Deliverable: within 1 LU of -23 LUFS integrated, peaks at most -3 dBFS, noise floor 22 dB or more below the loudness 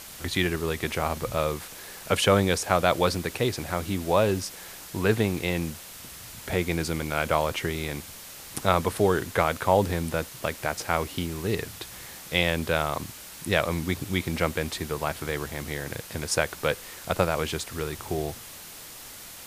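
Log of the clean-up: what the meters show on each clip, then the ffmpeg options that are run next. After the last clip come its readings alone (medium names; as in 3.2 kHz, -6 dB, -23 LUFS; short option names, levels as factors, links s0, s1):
noise floor -43 dBFS; noise floor target -49 dBFS; loudness -27.0 LUFS; peak level -4.0 dBFS; loudness target -23.0 LUFS
-> -af "afftdn=nr=6:nf=-43"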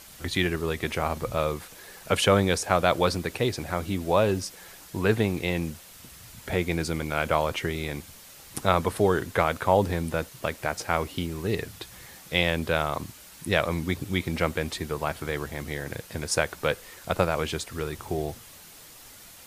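noise floor -48 dBFS; noise floor target -49 dBFS
-> -af "afftdn=nr=6:nf=-48"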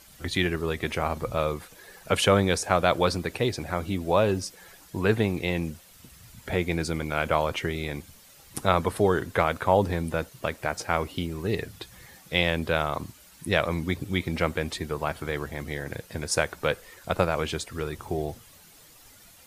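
noise floor -53 dBFS; loudness -27.5 LUFS; peak level -4.5 dBFS; loudness target -23.0 LUFS
-> -af "volume=1.68,alimiter=limit=0.708:level=0:latency=1"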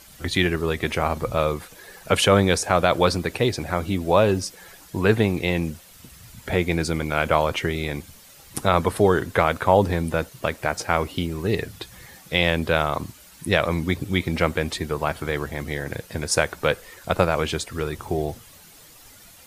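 loudness -23.0 LUFS; peak level -3.0 dBFS; noise floor -48 dBFS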